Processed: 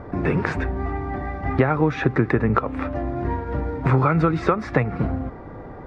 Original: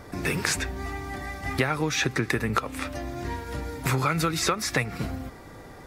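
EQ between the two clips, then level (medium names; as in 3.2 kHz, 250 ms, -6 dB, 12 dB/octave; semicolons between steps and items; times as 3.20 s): low-pass 1.2 kHz 12 dB/octave; +8.0 dB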